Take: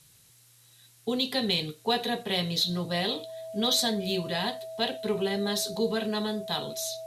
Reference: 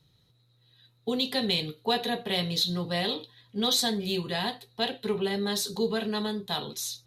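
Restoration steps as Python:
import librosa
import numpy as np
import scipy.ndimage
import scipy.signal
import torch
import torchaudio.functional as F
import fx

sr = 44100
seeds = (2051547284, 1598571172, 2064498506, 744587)

y = fx.notch(x, sr, hz=650.0, q=30.0)
y = fx.noise_reduce(y, sr, print_start_s=0.08, print_end_s=0.58, reduce_db=6.0)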